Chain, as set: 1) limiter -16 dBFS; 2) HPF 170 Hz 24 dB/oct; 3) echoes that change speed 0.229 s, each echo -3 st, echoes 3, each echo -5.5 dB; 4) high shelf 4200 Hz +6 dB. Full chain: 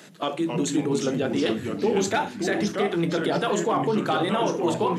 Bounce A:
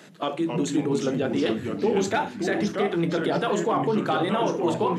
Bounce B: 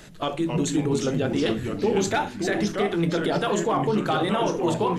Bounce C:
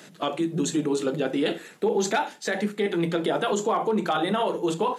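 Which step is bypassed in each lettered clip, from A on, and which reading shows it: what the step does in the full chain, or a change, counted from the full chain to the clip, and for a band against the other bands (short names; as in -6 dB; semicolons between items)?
4, 8 kHz band -4.5 dB; 2, 125 Hz band +3.0 dB; 3, momentary loudness spread change +1 LU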